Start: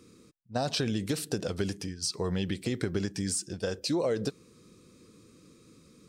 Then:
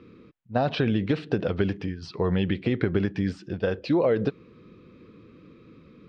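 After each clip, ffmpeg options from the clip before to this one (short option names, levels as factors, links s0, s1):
-af "lowpass=f=3000:w=0.5412,lowpass=f=3000:w=1.3066,volume=2.11"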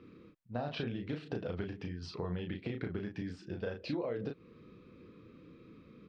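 -filter_complex "[0:a]acompressor=threshold=0.0316:ratio=4,asplit=2[s0][s1];[s1]adelay=34,volume=0.596[s2];[s0][s2]amix=inputs=2:normalize=0,volume=0.473"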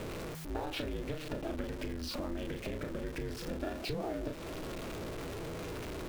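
-af "aeval=exprs='val(0)+0.5*0.00891*sgn(val(0))':c=same,acompressor=threshold=0.00794:ratio=2.5,aeval=exprs='val(0)*sin(2*PI*160*n/s)':c=same,volume=2.37"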